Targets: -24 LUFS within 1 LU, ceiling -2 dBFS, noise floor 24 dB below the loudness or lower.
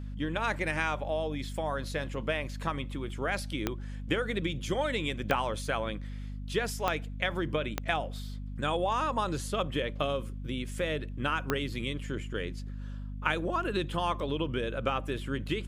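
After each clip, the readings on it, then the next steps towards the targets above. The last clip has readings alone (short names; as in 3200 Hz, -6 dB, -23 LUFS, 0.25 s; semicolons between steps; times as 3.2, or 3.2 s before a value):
clicks 5; hum 50 Hz; harmonics up to 250 Hz; hum level -36 dBFS; loudness -32.5 LUFS; peak -11.5 dBFS; loudness target -24.0 LUFS
-> de-click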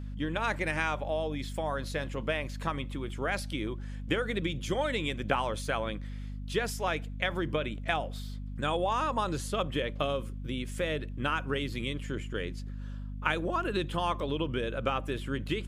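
clicks 0; hum 50 Hz; harmonics up to 250 Hz; hum level -36 dBFS
-> notches 50/100/150/200/250 Hz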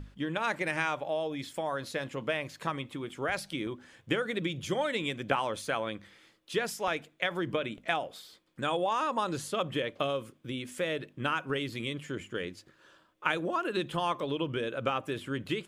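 hum none; loudness -33.0 LUFS; peak -11.5 dBFS; loudness target -24.0 LUFS
-> gain +9 dB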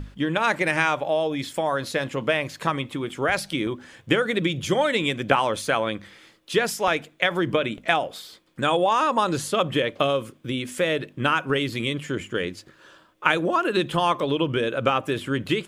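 loudness -24.0 LUFS; peak -2.5 dBFS; noise floor -57 dBFS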